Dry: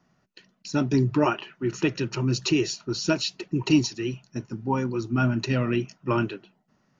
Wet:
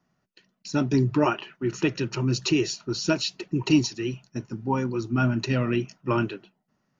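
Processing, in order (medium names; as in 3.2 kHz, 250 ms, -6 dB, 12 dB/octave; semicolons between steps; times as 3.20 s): gate -48 dBFS, range -6 dB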